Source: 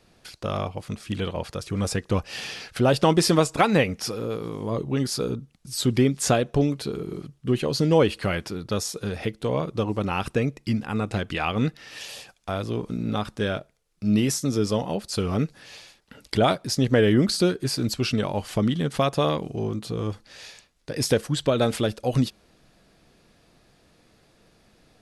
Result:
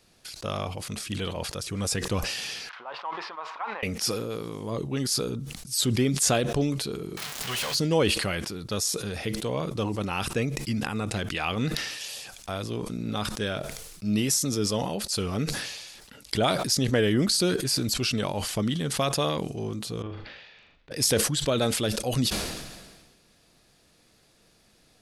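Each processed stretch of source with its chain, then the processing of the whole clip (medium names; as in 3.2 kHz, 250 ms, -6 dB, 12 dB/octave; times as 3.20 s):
2.69–3.83 s: zero-crossing glitches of -17 dBFS + ladder band-pass 1.1 kHz, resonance 60% + distance through air 310 m
7.17–7.75 s: zero-crossing glitches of -21.5 dBFS + amplifier tone stack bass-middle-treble 10-0-10 + overdrive pedal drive 30 dB, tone 2.2 kHz, clips at -16.5 dBFS
20.02–20.91 s: low-pass 3.1 kHz 24 dB/octave + compression 3:1, threshold -48 dBFS + flutter echo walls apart 6.9 m, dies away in 0.35 s
whole clip: treble shelf 3.2 kHz +10 dB; decay stretcher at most 40 dB/s; trim -5 dB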